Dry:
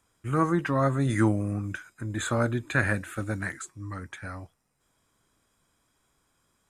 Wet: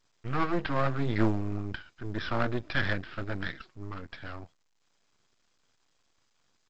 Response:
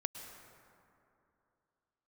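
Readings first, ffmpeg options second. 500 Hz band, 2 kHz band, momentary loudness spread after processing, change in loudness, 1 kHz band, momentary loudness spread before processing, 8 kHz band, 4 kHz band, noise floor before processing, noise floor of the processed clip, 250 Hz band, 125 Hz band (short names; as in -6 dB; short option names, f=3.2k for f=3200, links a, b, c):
-4.0 dB, -3.5 dB, 14 LU, -4.0 dB, -2.5 dB, 14 LU, under -20 dB, +2.5 dB, -73 dBFS, -72 dBFS, -4.5 dB, -5.5 dB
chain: -af "aresample=11025,aeval=exprs='max(val(0),0)':c=same,aresample=44100,volume=1.5dB" -ar 16000 -c:a pcm_alaw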